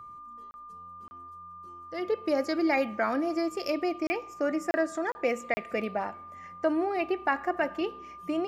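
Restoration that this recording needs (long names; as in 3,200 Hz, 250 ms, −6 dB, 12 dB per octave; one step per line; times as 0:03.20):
notch filter 1,200 Hz, Q 30
repair the gap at 0:00.51/0:01.08/0:04.07/0:04.71/0:05.12/0:05.54, 30 ms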